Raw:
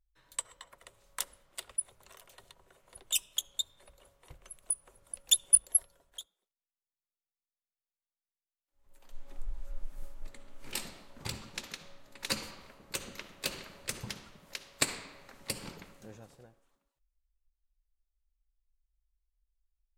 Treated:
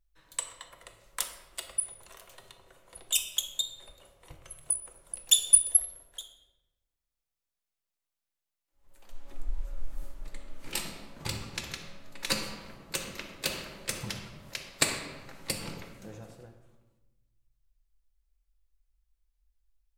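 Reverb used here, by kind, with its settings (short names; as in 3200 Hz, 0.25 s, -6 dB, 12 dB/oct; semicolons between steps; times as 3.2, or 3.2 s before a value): shoebox room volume 560 m³, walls mixed, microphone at 0.75 m; gain +3 dB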